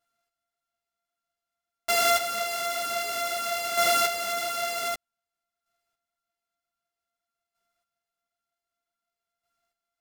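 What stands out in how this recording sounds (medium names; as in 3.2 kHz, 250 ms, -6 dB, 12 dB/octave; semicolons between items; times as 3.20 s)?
a buzz of ramps at a fixed pitch in blocks of 64 samples; chopped level 0.53 Hz, depth 60%, duty 15%; a shimmering, thickened sound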